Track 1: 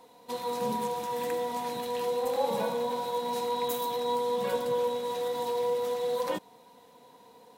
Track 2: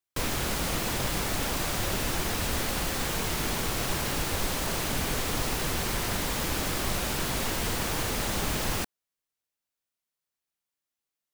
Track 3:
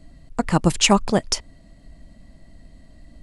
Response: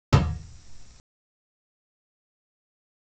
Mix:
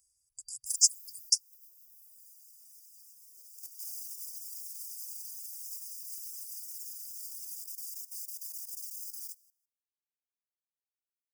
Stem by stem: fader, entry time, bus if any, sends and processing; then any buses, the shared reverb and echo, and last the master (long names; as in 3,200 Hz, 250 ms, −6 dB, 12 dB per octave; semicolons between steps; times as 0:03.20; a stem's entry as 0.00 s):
−0.5 dB, 1.25 s, bus A, no send, no echo send, low-pass filter 1,200 Hz 24 dB per octave; downward compressor 16 to 1, threshold −32 dBFS, peak gain reduction 10 dB
−2.0 dB, 0.50 s, bus A, no send, echo send −20 dB, high-pass filter 99 Hz 12 dB per octave; automatic ducking −13 dB, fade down 1.45 s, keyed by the third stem
0.0 dB, 0.00 s, no bus, no send, no echo send, no processing
bus A: 0.0 dB, output level in coarse steps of 11 dB; brickwall limiter −26 dBFS, peak gain reduction 6.5 dB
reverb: not used
echo: repeating echo 156 ms, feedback 15%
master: brick-wall band-stop 120–4,700 Hz; reverb reduction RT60 1.7 s; first difference